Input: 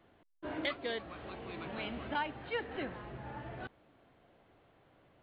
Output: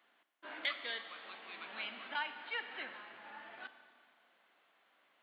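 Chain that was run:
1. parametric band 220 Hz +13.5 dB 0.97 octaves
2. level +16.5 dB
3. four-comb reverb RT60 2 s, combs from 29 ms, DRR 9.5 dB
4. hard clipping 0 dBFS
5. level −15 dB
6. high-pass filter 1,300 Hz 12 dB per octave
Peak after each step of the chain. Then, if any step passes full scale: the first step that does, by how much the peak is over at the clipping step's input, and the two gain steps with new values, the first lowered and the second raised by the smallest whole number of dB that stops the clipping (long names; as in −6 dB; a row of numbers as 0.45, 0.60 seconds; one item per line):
−20.5, −4.0, −4.5, −4.5, −19.5, −22.5 dBFS
no step passes full scale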